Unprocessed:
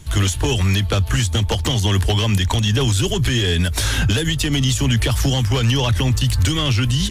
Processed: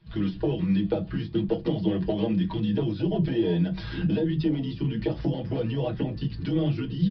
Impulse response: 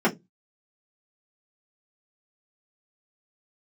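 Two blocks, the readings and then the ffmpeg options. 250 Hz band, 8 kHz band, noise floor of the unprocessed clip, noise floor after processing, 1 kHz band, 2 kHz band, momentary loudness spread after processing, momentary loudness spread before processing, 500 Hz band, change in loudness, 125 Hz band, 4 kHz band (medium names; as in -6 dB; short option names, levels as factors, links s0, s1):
-2.0 dB, under -40 dB, -23 dBFS, -38 dBFS, -13.0 dB, -18.5 dB, 4 LU, 2 LU, -3.5 dB, -9.0 dB, -11.5 dB, -21.0 dB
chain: -filter_complex "[0:a]afwtdn=0.126,lowshelf=f=200:g=-10.5,aecho=1:1:6.2:0.75,acompressor=threshold=0.0708:ratio=6,flanger=delay=8.8:depth=5.3:regen=-71:speed=0.69:shape=triangular,aresample=11025,aresample=44100,asplit=2[s0][s1];[1:a]atrim=start_sample=2205,asetrate=39249,aresample=44100[s2];[s1][s2]afir=irnorm=-1:irlink=0,volume=0.141[s3];[s0][s3]amix=inputs=2:normalize=0"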